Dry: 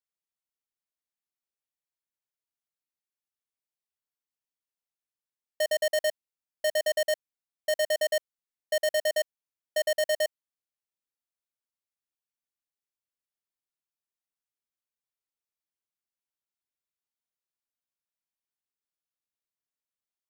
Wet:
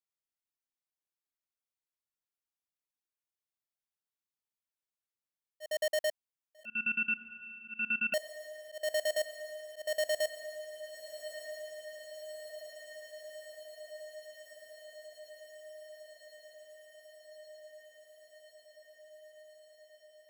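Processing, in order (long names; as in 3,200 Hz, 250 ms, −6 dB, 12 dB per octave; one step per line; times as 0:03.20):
feedback delay with all-pass diffusion 1,281 ms, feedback 76%, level −13 dB
volume swells 194 ms
0:06.65–0:08.14: voice inversion scrambler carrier 3,300 Hz
level −5 dB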